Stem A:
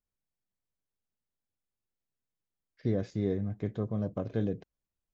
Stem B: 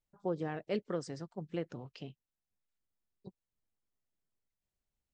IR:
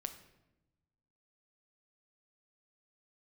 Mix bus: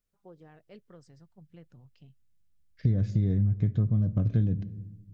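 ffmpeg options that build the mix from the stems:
-filter_complex "[0:a]equalizer=f=890:w=4.3:g=-11,volume=2dB,asplit=2[a][b];[b]volume=-6dB[c];[1:a]volume=-15.5dB[d];[2:a]atrim=start_sample=2205[e];[c][e]afir=irnorm=-1:irlink=0[f];[a][d][f]amix=inputs=3:normalize=0,asubboost=boost=11.5:cutoff=140,acompressor=threshold=-22dB:ratio=6"

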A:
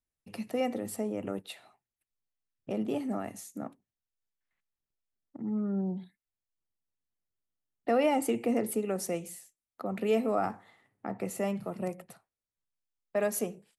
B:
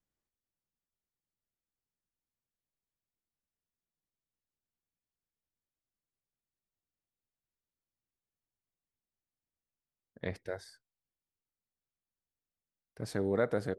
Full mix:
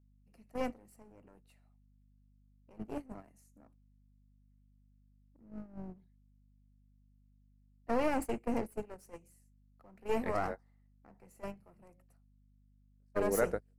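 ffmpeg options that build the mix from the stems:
-filter_complex "[0:a]aeval=exprs='val(0)+0.00708*(sin(2*PI*50*n/s)+sin(2*PI*2*50*n/s)/2+sin(2*PI*3*50*n/s)/3+sin(2*PI*4*50*n/s)/4+sin(2*PI*5*50*n/s)/5)':c=same,aeval=exprs='clip(val(0),-1,0.0133)':c=same,volume=-2dB,asplit=2[a][b];[1:a]lowshelf=f=180:g=-10,volume=0.5dB[c];[b]apad=whole_len=607897[d];[c][d]sidechaingate=range=-33dB:threshold=-42dB:ratio=16:detection=peak[e];[a][e]amix=inputs=2:normalize=0,agate=range=-20dB:threshold=-33dB:ratio=16:detection=peak,equalizer=f=3.5k:w=5.1:g=-14.5"

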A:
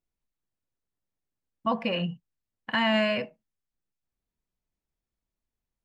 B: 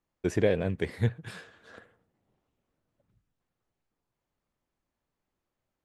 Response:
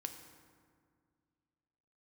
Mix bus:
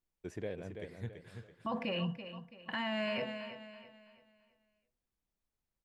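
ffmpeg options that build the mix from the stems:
-filter_complex "[0:a]bandreject=f=124.8:t=h:w=4,bandreject=f=249.6:t=h:w=4,bandreject=f=374.4:t=h:w=4,bandreject=f=499.2:t=h:w=4,bandreject=f=624:t=h:w=4,volume=-3dB,asplit=2[a][b];[b]volume=-15.5dB[c];[1:a]volume=-15.5dB,asplit=2[d][e];[e]volume=-7.5dB[f];[c][f]amix=inputs=2:normalize=0,aecho=0:1:332|664|996|1328|1660:1|0.36|0.13|0.0467|0.0168[g];[a][d][g]amix=inputs=3:normalize=0,alimiter=level_in=4dB:limit=-24dB:level=0:latency=1:release=14,volume=-4dB"

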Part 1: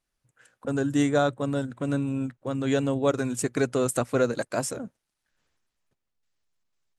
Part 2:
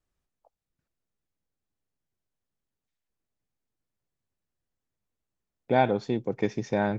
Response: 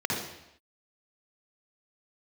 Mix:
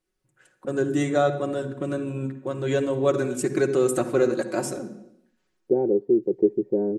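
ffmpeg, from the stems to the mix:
-filter_complex "[0:a]volume=-3.5dB,asplit=2[a][b];[b]volume=-18dB[c];[1:a]lowpass=f=430:t=q:w=4.9,volume=-9dB[d];[2:a]atrim=start_sample=2205[e];[c][e]afir=irnorm=-1:irlink=0[f];[a][d][f]amix=inputs=3:normalize=0,equalizer=f=320:t=o:w=0.5:g=12,aecho=1:1:5.4:0.62"

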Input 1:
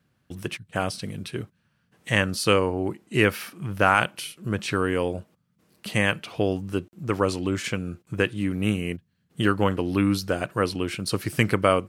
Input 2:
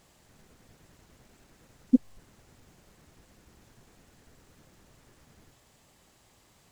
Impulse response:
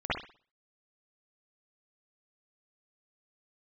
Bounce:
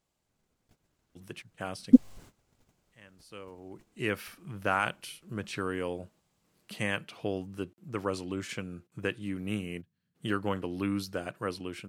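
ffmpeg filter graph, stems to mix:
-filter_complex "[0:a]highpass=97,adelay=850,volume=-14.5dB[a];[1:a]bandreject=f=1.8k:w=12,agate=range=-19dB:threshold=-54dB:ratio=16:detection=peak,volume=0dB,asplit=2[b][c];[c]apad=whole_len=561779[d];[a][d]sidechaincompress=threshold=-60dB:ratio=20:attack=5.5:release=767[e];[e][b]amix=inputs=2:normalize=0,dynaudnorm=f=400:g=7:m=5.5dB"

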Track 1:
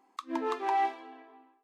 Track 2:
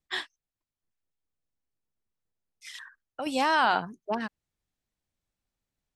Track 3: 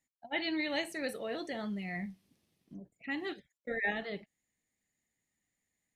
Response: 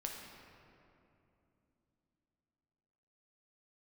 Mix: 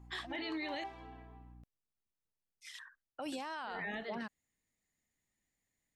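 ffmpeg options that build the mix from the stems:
-filter_complex "[0:a]aeval=exprs='val(0)+0.00355*(sin(2*PI*60*n/s)+sin(2*PI*2*60*n/s)/2+sin(2*PI*3*60*n/s)/3+sin(2*PI*4*60*n/s)/4+sin(2*PI*5*60*n/s)/5)':c=same,volume=-5dB[a];[1:a]volume=-7dB[b];[2:a]volume=-2.5dB,asplit=3[c][d][e];[c]atrim=end=0.84,asetpts=PTS-STARTPTS,afade=t=out:st=0.836:d=0.004:c=hsin[f];[d]atrim=start=0.84:end=3.32,asetpts=PTS-STARTPTS,volume=0[g];[e]atrim=start=3.32,asetpts=PTS-STARTPTS,afade=t=in:d=0.004:c=hsin[h];[f][g][h]concat=n=3:v=0:a=1,asplit=2[i][j];[j]apad=whole_len=72137[k];[a][k]sidechaincompress=threshold=-46dB:ratio=4:attack=27:release=197[l];[l][b][i]amix=inputs=3:normalize=0,alimiter=level_in=8.5dB:limit=-24dB:level=0:latency=1:release=17,volume=-8.5dB"

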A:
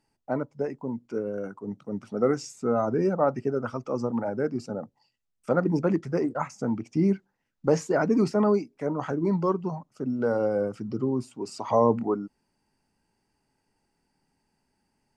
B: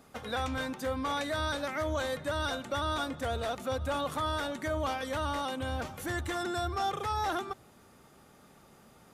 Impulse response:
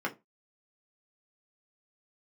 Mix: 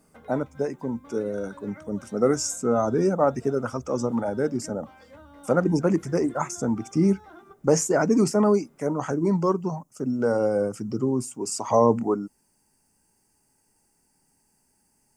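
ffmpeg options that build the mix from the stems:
-filter_complex "[0:a]aexciter=amount=8.5:drive=7.4:freq=5.9k,volume=2.5dB[a];[1:a]lowshelf=f=380:g=10.5,acompressor=threshold=-35dB:ratio=6,volume=-15dB,asplit=2[b][c];[c]volume=-4dB[d];[2:a]atrim=start_sample=2205[e];[d][e]afir=irnorm=-1:irlink=0[f];[a][b][f]amix=inputs=3:normalize=0,highshelf=f=6k:g=-9.5"

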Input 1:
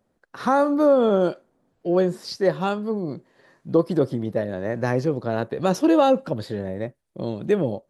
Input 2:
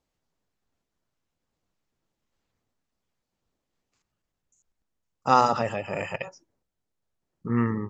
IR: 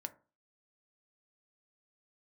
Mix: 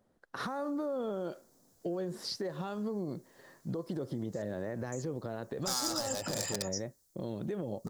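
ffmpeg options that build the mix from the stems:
-filter_complex "[0:a]acompressor=threshold=-20dB:ratio=6,alimiter=level_in=0.5dB:limit=-24dB:level=0:latency=1:release=178,volume=-0.5dB,volume=-1.5dB[a];[1:a]alimiter=limit=-13dB:level=0:latency=1:release=241,volume=28.5dB,asoftclip=hard,volume=-28.5dB,aexciter=amount=7.2:drive=9.1:freq=4.2k,adelay=400,volume=-2dB[b];[a][b]amix=inputs=2:normalize=0,equalizer=f=2.5k:t=o:w=0.3:g=-4.5,acompressor=threshold=-33dB:ratio=2.5"

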